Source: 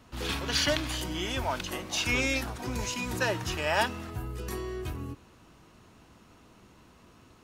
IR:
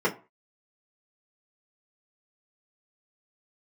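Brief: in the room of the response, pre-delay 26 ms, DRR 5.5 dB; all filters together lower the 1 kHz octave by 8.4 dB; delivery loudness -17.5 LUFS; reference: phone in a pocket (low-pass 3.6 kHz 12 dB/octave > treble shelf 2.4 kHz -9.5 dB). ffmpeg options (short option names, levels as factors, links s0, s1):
-filter_complex "[0:a]equalizer=f=1000:t=o:g=-9,asplit=2[s0][s1];[1:a]atrim=start_sample=2205,adelay=26[s2];[s1][s2]afir=irnorm=-1:irlink=0,volume=0.112[s3];[s0][s3]amix=inputs=2:normalize=0,lowpass=3600,highshelf=f=2400:g=-9.5,volume=6.68"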